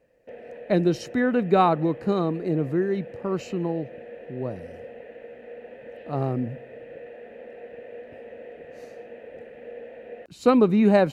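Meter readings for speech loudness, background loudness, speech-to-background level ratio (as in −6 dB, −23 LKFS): −24.0 LKFS, −42.0 LKFS, 18.0 dB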